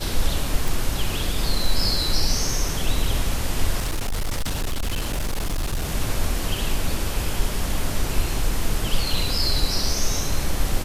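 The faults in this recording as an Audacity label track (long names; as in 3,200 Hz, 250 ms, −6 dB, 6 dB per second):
0.680000	0.680000	click
3.790000	5.920000	clipping −20.5 dBFS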